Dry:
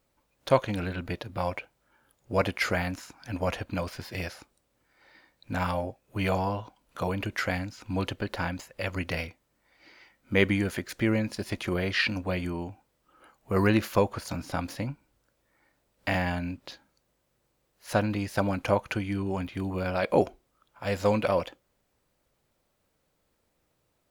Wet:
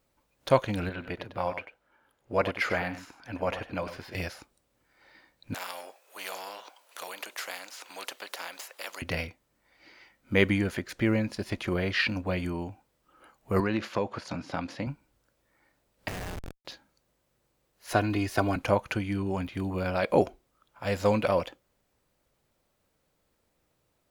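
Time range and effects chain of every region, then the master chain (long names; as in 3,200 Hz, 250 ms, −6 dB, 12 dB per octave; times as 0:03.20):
0:00.89–0:04.15: bass and treble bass −7 dB, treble −9 dB + single-tap delay 96 ms −11 dB
0:05.54–0:09.02: high-pass filter 540 Hz 24 dB per octave + every bin compressed towards the loudest bin 2 to 1
0:10.58–0:12.38: high-shelf EQ 6,700 Hz −6.5 dB + floating-point word with a short mantissa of 6 bits
0:13.60–0:14.87: band-pass filter 130–4,900 Hz + downward compressor 2.5 to 1, threshold −25 dBFS
0:16.08–0:16.65: meter weighting curve ITU-R 468 + downward compressor 2 to 1, threshold −33 dBFS + comparator with hysteresis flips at −31 dBFS
0:17.90–0:18.56: comb filter 2.8 ms, depth 59% + multiband upward and downward compressor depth 40%
whole clip: no processing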